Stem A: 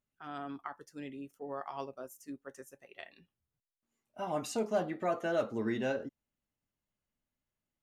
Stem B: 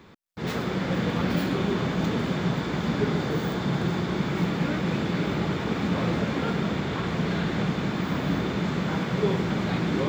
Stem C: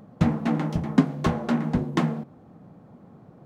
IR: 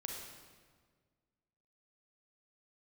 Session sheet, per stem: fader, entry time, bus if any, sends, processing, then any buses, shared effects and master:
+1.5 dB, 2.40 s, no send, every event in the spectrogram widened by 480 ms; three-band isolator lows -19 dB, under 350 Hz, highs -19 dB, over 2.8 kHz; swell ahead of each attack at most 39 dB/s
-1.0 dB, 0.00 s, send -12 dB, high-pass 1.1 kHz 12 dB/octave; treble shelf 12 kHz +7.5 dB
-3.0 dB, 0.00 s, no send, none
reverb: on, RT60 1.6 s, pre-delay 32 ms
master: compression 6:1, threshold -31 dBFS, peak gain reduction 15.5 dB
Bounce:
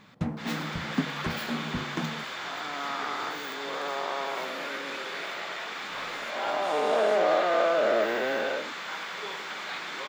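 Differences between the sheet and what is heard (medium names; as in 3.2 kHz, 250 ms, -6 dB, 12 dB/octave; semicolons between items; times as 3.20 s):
stem B: missing treble shelf 12 kHz +7.5 dB; stem C -3.0 dB -> -9.5 dB; master: missing compression 6:1, threshold -31 dBFS, peak gain reduction 15.5 dB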